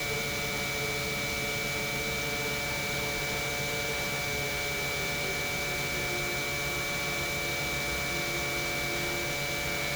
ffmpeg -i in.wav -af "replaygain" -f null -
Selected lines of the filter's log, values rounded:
track_gain = +14.1 dB
track_peak = 0.076